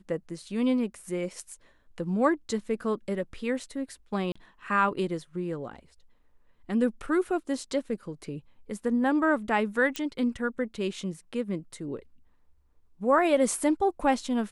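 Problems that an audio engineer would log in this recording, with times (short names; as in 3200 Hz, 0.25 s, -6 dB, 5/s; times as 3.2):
4.32–4.36 gap 35 ms
9.96 pop -15 dBFS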